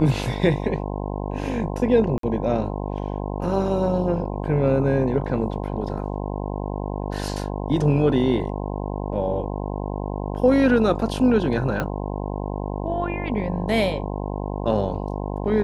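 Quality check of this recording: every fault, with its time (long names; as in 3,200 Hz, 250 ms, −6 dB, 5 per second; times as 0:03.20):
mains buzz 50 Hz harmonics 21 −28 dBFS
0:02.18–0:02.23: drop-out 53 ms
0:11.80: click −12 dBFS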